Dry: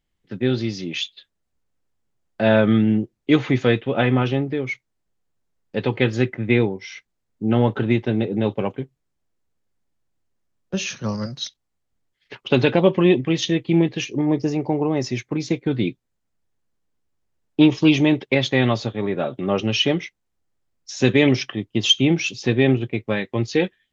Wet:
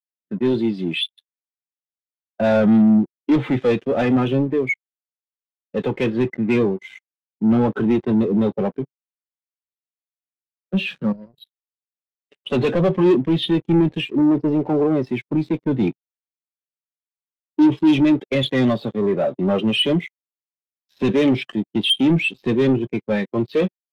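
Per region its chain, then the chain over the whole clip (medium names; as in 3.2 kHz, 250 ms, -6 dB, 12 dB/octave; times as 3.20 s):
11.12–12.40 s: compression 2.5:1, threshold -39 dBFS + static phaser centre 2.9 kHz, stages 4
whole clip: elliptic band-pass 150–3800 Hz, stop band 40 dB; waveshaping leveller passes 5; spectral contrast expander 1.5:1; trim -4.5 dB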